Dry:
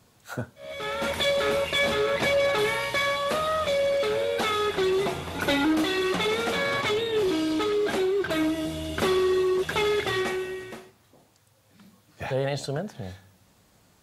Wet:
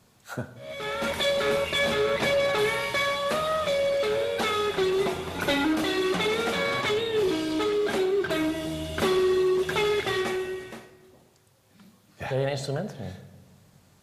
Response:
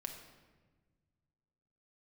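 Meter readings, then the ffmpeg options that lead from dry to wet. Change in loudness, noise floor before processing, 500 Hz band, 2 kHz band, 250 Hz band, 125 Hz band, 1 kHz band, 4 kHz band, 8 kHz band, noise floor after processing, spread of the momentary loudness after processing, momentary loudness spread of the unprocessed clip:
−0.5 dB, −61 dBFS, 0.0 dB, −0.5 dB, −1.0 dB, 0.0 dB, −0.5 dB, −0.5 dB, −0.5 dB, −60 dBFS, 12 LU, 12 LU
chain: -filter_complex "[0:a]asplit=2[link_01][link_02];[1:a]atrim=start_sample=2205[link_03];[link_02][link_03]afir=irnorm=-1:irlink=0,volume=0dB[link_04];[link_01][link_04]amix=inputs=2:normalize=0,volume=-4.5dB" -ar 32000 -c:a libmp3lame -b:a 112k

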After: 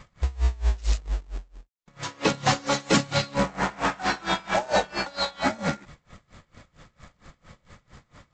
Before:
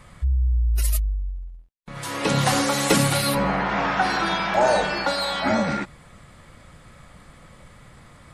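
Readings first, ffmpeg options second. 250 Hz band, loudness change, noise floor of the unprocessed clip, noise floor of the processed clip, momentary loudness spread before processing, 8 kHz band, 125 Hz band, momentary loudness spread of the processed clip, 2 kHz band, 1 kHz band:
−4.0 dB, −4.5 dB, −50 dBFS, −70 dBFS, 12 LU, −6.0 dB, −4.5 dB, 11 LU, −4.0 dB, −4.0 dB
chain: -af "aresample=16000,acrusher=bits=3:mode=log:mix=0:aa=0.000001,aresample=44100,aeval=exprs='val(0)*pow(10,-25*(0.5-0.5*cos(2*PI*4.4*n/s))/20)':channel_layout=same,volume=1.5dB"

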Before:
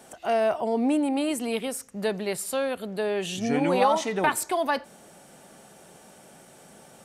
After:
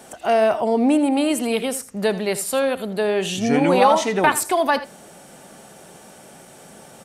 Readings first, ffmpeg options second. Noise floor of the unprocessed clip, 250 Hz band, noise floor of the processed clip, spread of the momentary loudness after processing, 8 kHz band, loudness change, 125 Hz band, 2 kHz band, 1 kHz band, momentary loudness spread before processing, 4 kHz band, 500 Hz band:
−52 dBFS, +6.5 dB, −45 dBFS, 8 LU, +6.5 dB, +6.5 dB, +6.5 dB, +6.5 dB, +6.5 dB, 8 LU, +6.5 dB, +6.5 dB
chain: -af "aecho=1:1:81:0.178,volume=6.5dB"

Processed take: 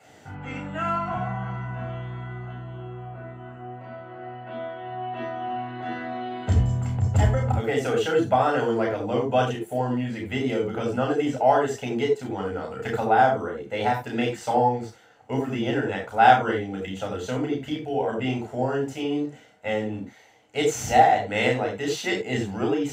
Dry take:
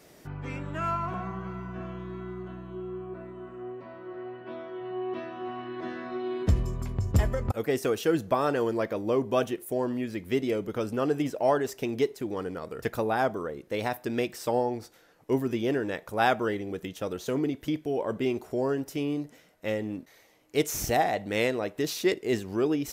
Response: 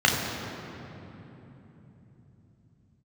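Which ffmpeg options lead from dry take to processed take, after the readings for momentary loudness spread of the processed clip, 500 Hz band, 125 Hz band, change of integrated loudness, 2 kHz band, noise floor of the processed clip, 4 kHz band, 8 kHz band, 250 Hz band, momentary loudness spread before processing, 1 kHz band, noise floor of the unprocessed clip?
16 LU, +3.0 dB, +6.5 dB, +5.0 dB, +6.0 dB, −51 dBFS, +4.5 dB, +1.5 dB, +2.5 dB, 13 LU, +9.5 dB, −57 dBFS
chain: -filter_complex "[0:a]equalizer=frequency=160:width_type=o:width=0.33:gain=-9,equalizer=frequency=800:width_type=o:width=0.33:gain=7,equalizer=frequency=5000:width_type=o:width=0.33:gain=-3,equalizer=frequency=8000:width_type=o:width=0.33:gain=6,equalizer=frequency=12500:width_type=o:width=0.33:gain=-4[link_01];[1:a]atrim=start_sample=2205,atrim=end_sample=4410[link_02];[link_01][link_02]afir=irnorm=-1:irlink=0,volume=-12.5dB"

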